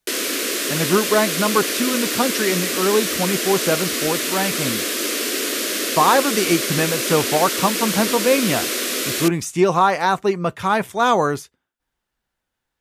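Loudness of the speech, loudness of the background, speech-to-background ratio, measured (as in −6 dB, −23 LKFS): −20.5 LKFS, −21.0 LKFS, 0.5 dB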